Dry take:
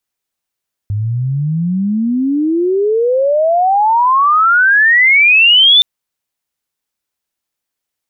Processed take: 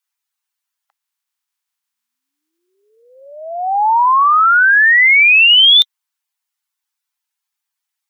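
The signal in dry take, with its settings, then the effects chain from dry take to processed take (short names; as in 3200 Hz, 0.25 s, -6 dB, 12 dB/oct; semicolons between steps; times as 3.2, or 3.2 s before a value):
chirp logarithmic 100 Hz -> 3600 Hz -14 dBFS -> -4 dBFS 4.92 s
bin magnitudes rounded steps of 15 dB; steep high-pass 810 Hz 48 dB/oct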